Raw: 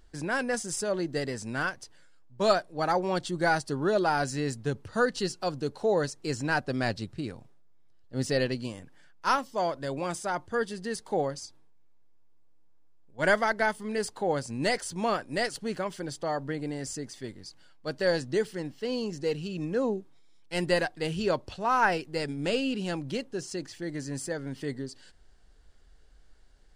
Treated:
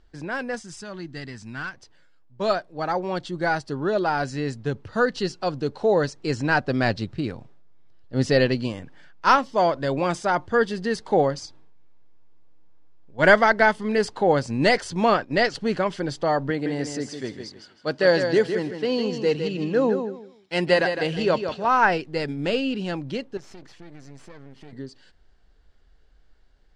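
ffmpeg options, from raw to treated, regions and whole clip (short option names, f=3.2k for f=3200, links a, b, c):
-filter_complex "[0:a]asettb=1/sr,asplit=3[a][b][c];[a]atrim=end=0.604[d];[b]atrim=start=0.6:end=1.74,asetpts=PTS-STARTPTS,afade=t=in:d=0.004:c=qsin,afade=t=out:st=1.136:d=0.004:c=qsin,equalizer=f=510:t=o:w=0.9:g=-14.5,volume=26.5dB,asoftclip=hard,volume=-26.5dB[e];[c]atrim=start=1.736[f];[d][e]acrossfade=d=0.004:c1=hsin:c2=qsin[g];[g][f]acrossfade=d=0.004:c1=qsin:c2=hsin,asettb=1/sr,asplit=3[h][i][j];[h]atrim=end=15.144[k];[i]atrim=start=15.14:end=15.55,asetpts=PTS-STARTPTS,afade=t=in:d=0.004:c=qsin,afade=t=out:st=0.406:d=0.004:c=qsin,lowpass=f=6.9k:w=0.5412,lowpass=f=6.9k:w=1.3066,agate=range=-8dB:threshold=-45dB:ratio=16:release=100:detection=peak[l];[j]atrim=start=15.546[m];[k][l]acrossfade=d=0.004:c1=hsin:c2=qsin[n];[n][m]acrossfade=d=0.004:c1=qsin:c2=hsin,asettb=1/sr,asplit=3[o][p][q];[o]atrim=end=16.504[r];[p]atrim=start=16.5:end=21.68,asetpts=PTS-STARTPTS,afade=t=in:d=0.004:c=qsin,afade=t=out:st=5.176:d=0.004:c=qsin,highpass=f=170:p=1,aecho=1:1:158|316|474:0.422|0.097|0.0223,atrim=end_sample=228438[s];[q]atrim=start=21.676[t];[r][s]acrossfade=d=0.004:c1=hsin:c2=qsin[u];[u][t]acrossfade=d=0.004:c1=qsin:c2=hsin,asettb=1/sr,asplit=3[v][w][x];[v]atrim=end=23.374[y];[w]atrim=start=23.37:end=24.73,asetpts=PTS-STARTPTS,afade=t=in:d=0.004:c=qsin,afade=t=out:st=1.356:d=0.004:c=qsin,bandreject=f=4.8k:w=20,aeval=exprs='max(val(0),0)':c=same,acompressor=threshold=-40dB:ratio=4:attack=3.2:release=140:knee=1:detection=peak[z];[x]atrim=start=24.726[aa];[y][z]acrossfade=d=0.004:c1=hsin:c2=qsin[ab];[ab][aa]acrossfade=d=0.004:c1=qsin:c2=hsin,lowpass=4.7k,dynaudnorm=f=520:g=21:m=10dB"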